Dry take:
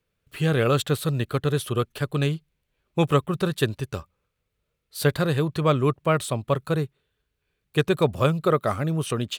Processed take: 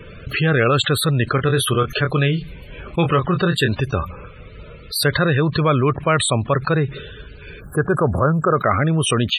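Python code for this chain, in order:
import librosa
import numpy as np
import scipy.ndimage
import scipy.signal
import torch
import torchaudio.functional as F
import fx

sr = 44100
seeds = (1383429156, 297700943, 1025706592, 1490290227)

y = fx.spec_box(x, sr, start_s=7.61, length_s=0.95, low_hz=1700.0, high_hz=7000.0, gain_db=-22)
y = fx.dynamic_eq(y, sr, hz=1800.0, q=1.0, threshold_db=-41.0, ratio=4.0, max_db=7)
y = fx.spec_topn(y, sr, count=64)
y = fx.doubler(y, sr, ms=23.0, db=-10.0, at=(1.36, 3.72))
y = fx.env_flatten(y, sr, amount_pct=70)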